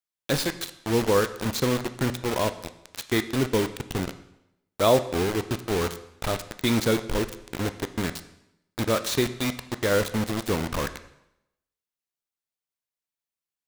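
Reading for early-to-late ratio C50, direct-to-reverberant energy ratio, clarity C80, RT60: 13.5 dB, 10.5 dB, 15.5 dB, 0.85 s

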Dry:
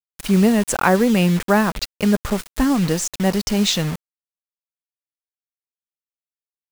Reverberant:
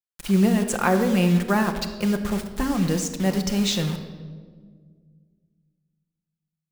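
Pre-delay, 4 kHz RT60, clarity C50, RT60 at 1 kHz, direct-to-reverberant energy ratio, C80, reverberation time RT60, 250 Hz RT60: 6 ms, 1.1 s, 9.0 dB, 1.4 s, 5.5 dB, 11.0 dB, 1.8 s, 2.5 s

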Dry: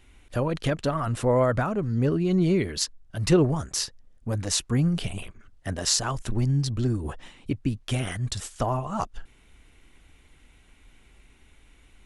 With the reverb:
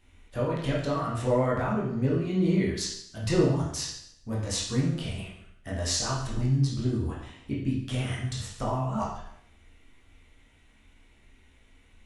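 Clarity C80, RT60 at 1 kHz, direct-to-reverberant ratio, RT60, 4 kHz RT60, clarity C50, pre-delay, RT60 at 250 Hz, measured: 6.5 dB, 0.70 s, −5.5 dB, 0.70 s, 0.70 s, 3.5 dB, 15 ms, 0.70 s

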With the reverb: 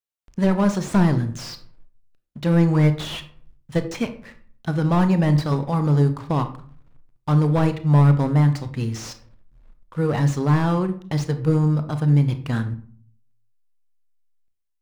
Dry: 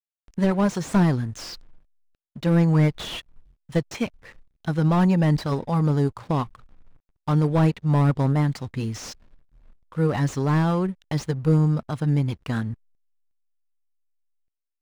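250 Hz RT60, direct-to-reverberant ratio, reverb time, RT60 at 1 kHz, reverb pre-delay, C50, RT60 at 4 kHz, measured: 0.65 s, 9.0 dB, 0.50 s, 0.45 s, 26 ms, 12.5 dB, 0.30 s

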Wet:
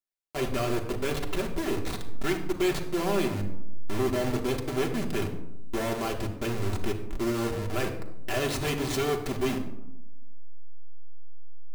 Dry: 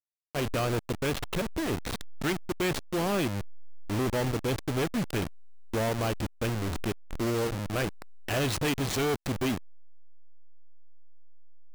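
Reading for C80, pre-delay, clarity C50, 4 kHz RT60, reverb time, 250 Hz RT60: 12.0 dB, 3 ms, 9.5 dB, 0.50 s, 0.90 s, 1.2 s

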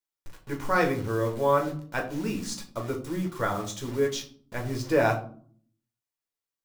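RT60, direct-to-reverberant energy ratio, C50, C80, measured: 0.50 s, 1.0 dB, 11.0 dB, 14.5 dB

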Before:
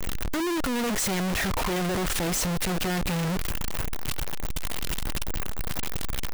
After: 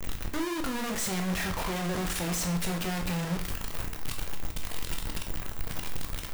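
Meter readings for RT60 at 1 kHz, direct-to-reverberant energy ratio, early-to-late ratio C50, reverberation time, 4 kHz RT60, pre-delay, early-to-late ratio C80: 0.45 s, 3.0 dB, 9.5 dB, 0.45 s, 0.45 s, 8 ms, 14.0 dB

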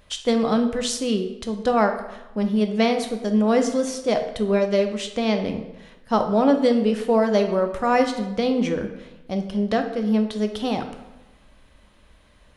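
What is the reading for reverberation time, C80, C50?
1.0 s, 11.0 dB, 8.5 dB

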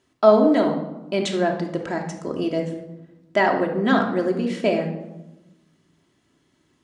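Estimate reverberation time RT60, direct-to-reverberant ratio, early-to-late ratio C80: 1.0 s, 1.0 dB, 10.0 dB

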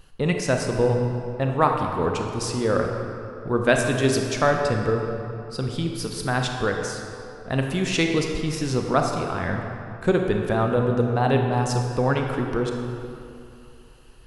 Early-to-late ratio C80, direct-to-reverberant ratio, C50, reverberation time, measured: 4.5 dB, 2.5 dB, 3.5 dB, 2.8 s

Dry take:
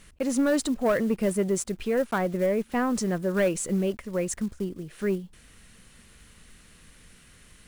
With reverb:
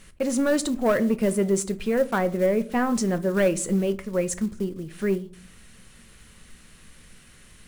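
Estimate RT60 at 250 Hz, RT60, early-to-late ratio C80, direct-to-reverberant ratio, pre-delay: 0.75 s, 0.45 s, 23.5 dB, 11.0 dB, 5 ms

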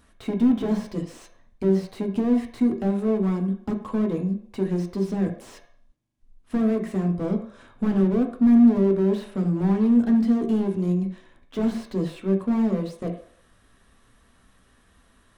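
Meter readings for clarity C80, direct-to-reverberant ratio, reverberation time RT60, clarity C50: 13.0 dB, 3.0 dB, 0.60 s, 9.0 dB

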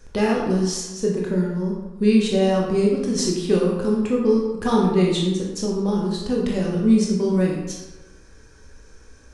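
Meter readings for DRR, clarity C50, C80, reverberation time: −2.5 dB, 2.0 dB, 4.5 dB, 1.1 s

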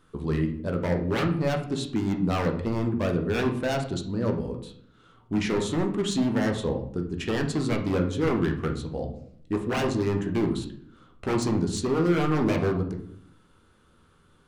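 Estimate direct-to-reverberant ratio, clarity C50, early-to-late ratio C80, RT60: 2.5 dB, 8.5 dB, 13.0 dB, 0.65 s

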